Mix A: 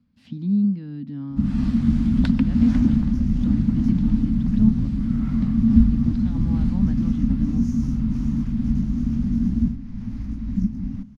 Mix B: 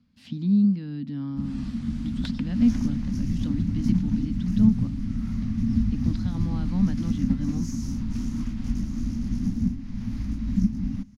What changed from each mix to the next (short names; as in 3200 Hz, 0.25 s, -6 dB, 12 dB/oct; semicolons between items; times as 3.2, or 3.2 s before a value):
first sound -10.5 dB; master: add high shelf 2300 Hz +9 dB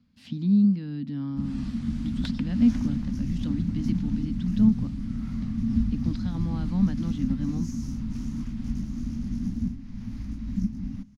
second sound -5.0 dB